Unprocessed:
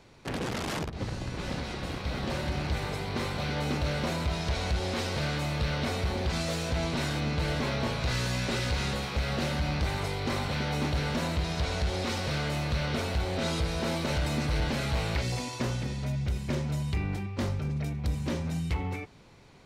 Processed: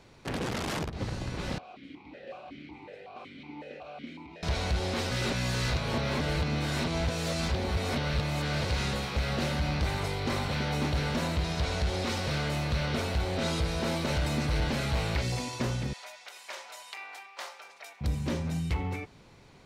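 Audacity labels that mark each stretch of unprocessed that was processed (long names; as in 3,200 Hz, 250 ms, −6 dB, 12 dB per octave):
1.580000	4.430000	formant filter that steps through the vowels 5.4 Hz
5.110000	8.700000	reverse
15.930000	18.010000	high-pass filter 720 Hz 24 dB per octave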